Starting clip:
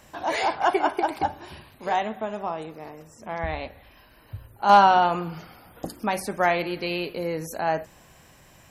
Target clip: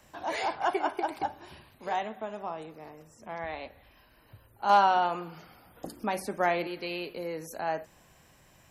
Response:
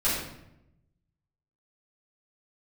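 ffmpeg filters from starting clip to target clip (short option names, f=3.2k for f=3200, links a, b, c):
-filter_complex "[0:a]asettb=1/sr,asplit=3[a][b][c];[a]atrim=end=5.864[d];[b]atrim=start=5.86:end=6.67,asetpts=PTS-STARTPTS,afade=t=in:d=0.004:c=qsin,afade=t=out:st=0.806:d=0.004:c=qsin,lowshelf=f=340:g=9[e];[c]atrim=start=6.666[f];[d][e]acrossfade=d=0.004:c1=hsin:c2=qsin[g];[g][f]acrossfade=d=0.004:c1=qsin:c2=hsin,acrossover=split=220|1400|1700[h][i][j][k];[h]acompressor=threshold=-45dB:ratio=6[l];[l][i][j][k]amix=inputs=4:normalize=0,volume=-6.5dB"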